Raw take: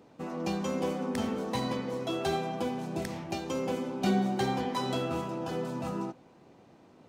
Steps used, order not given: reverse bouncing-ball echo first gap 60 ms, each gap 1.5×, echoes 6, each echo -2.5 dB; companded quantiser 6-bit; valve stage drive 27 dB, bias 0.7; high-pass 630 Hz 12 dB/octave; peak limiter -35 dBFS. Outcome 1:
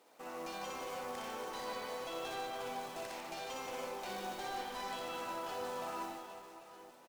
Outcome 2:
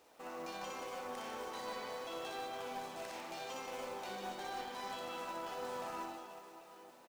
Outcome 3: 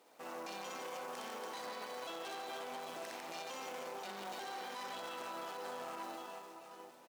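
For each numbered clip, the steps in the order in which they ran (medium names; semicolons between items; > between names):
companded quantiser > high-pass > valve stage > peak limiter > reverse bouncing-ball echo; high-pass > peak limiter > reverse bouncing-ball echo > valve stage > companded quantiser; companded quantiser > reverse bouncing-ball echo > valve stage > high-pass > peak limiter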